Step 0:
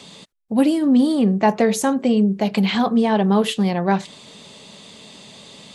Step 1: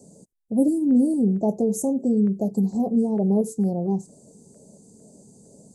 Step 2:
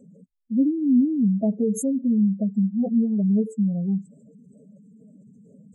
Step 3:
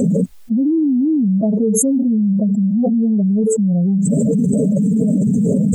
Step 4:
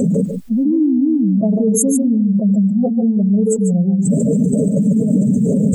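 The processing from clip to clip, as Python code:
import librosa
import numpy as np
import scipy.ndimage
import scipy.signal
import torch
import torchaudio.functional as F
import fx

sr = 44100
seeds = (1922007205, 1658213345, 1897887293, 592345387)

y1 = scipy.signal.sosfilt(scipy.signal.cheby2(4, 60, [1400.0, 3300.0], 'bandstop', fs=sr, output='sos'), x)
y1 = fx.filter_lfo_notch(y1, sr, shape='square', hz=2.2, low_hz=600.0, high_hz=1700.0, q=2.1)
y1 = y1 * librosa.db_to_amplitude(-3.0)
y2 = fx.spec_expand(y1, sr, power=2.7)
y2 = fx.peak_eq(y2, sr, hz=370.0, db=-13.0, octaves=0.21)
y2 = y2 * librosa.db_to_amplitude(1.0)
y3 = fx.env_flatten(y2, sr, amount_pct=100)
y4 = y3 + 10.0 ** (-7.5 / 20.0) * np.pad(y3, (int(145 * sr / 1000.0), 0))[:len(y3)]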